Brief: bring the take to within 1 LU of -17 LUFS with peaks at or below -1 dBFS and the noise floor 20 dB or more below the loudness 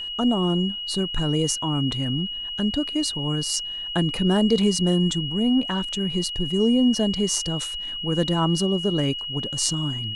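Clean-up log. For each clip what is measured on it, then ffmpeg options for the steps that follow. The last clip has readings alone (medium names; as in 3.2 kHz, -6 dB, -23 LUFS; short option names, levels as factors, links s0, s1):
steady tone 2.9 kHz; tone level -29 dBFS; loudness -23.0 LUFS; peak level -3.5 dBFS; loudness target -17.0 LUFS
-> -af "bandreject=f=2900:w=30"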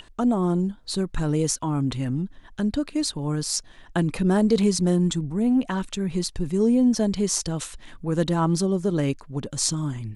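steady tone not found; loudness -24.0 LUFS; peak level -4.0 dBFS; loudness target -17.0 LUFS
-> -af "volume=2.24,alimiter=limit=0.891:level=0:latency=1"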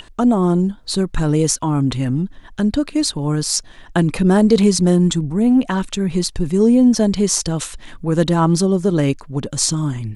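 loudness -17.0 LUFS; peak level -1.0 dBFS; noise floor -43 dBFS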